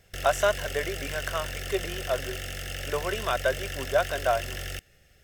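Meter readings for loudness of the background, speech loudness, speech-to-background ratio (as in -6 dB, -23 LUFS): -35.0 LUFS, -29.5 LUFS, 5.5 dB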